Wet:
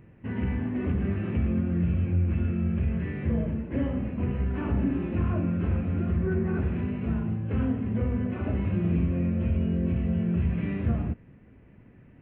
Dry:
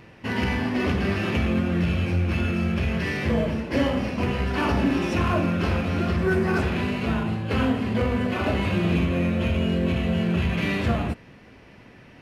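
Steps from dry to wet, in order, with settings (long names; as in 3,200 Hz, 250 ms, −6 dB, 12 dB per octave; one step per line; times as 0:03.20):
Gaussian smoothing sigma 4.6 samples
parametric band 870 Hz −12.5 dB 2.6 octaves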